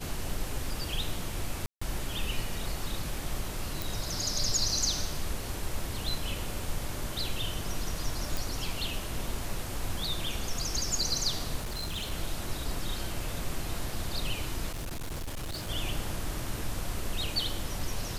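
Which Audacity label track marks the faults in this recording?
1.660000	1.810000	dropout 155 ms
3.820000	3.820000	pop
8.370000	8.370000	pop
11.580000	12.120000	clipped -30.5 dBFS
14.710000	15.700000	clipped -32.5 dBFS

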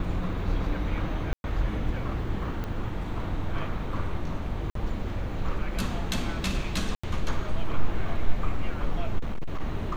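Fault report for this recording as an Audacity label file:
1.330000	1.440000	dropout 111 ms
2.640000	2.640000	pop -21 dBFS
4.700000	4.750000	dropout 53 ms
6.950000	7.040000	dropout 85 ms
9.180000	9.610000	clipped -24 dBFS

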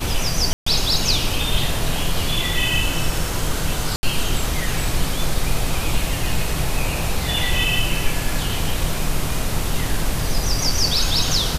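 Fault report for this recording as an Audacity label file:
0.530000	0.660000	dropout 134 ms
3.960000	4.030000	dropout 70 ms

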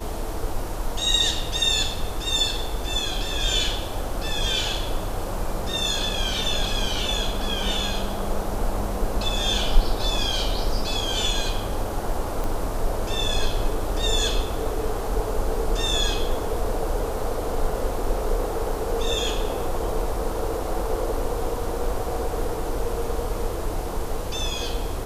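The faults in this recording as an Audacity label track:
12.440000	12.440000	pop

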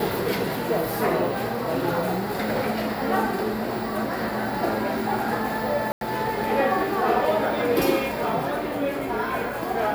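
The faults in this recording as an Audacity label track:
5.920000	6.010000	dropout 92 ms

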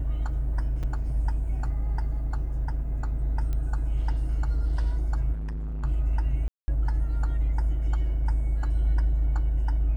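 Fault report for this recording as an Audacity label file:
0.830000	0.830000	dropout 5 ms
3.530000	3.530000	pop -21 dBFS
5.320000	5.850000	clipped -29.5 dBFS
6.480000	6.680000	dropout 200 ms

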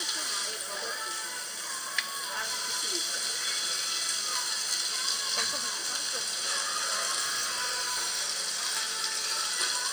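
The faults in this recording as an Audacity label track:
1.990000	2.740000	clipped -27 dBFS
7.190000	8.210000	clipped -26 dBFS

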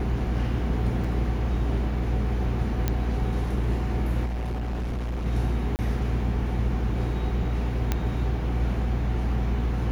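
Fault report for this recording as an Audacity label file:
1.040000	1.040000	dropout 4.7 ms
2.880000	2.880000	pop -11 dBFS
4.250000	5.270000	clipped -26 dBFS
5.760000	5.790000	dropout 29 ms
7.920000	7.920000	pop -10 dBFS

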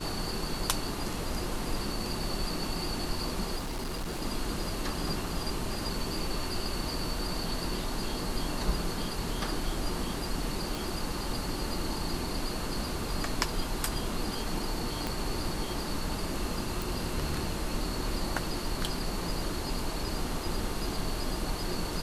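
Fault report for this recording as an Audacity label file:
3.560000	4.230000	clipped -31 dBFS
10.750000	10.750000	pop
15.070000	15.070000	pop
16.820000	16.820000	pop

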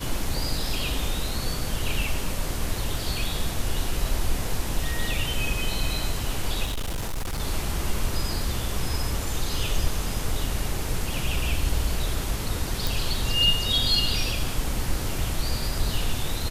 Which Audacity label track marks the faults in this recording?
6.640000	7.410000	clipped -25 dBFS
12.870000	12.870000	pop

